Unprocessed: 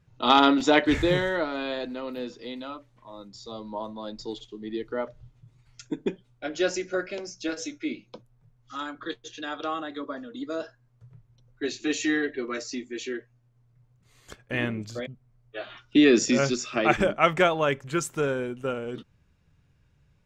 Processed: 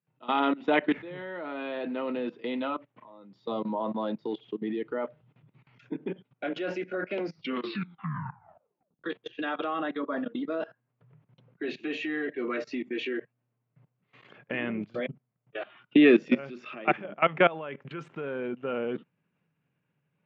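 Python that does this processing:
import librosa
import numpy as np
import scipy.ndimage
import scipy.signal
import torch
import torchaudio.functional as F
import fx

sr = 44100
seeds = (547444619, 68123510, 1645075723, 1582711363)

y = fx.edit(x, sr, fx.tape_stop(start_s=7.15, length_s=1.89), tone=tone)
y = fx.level_steps(y, sr, step_db=20)
y = scipy.signal.sosfilt(scipy.signal.cheby1(3, 1.0, [160.0, 2800.0], 'bandpass', fs=sr, output='sos'), y)
y = fx.rider(y, sr, range_db=10, speed_s=2.0)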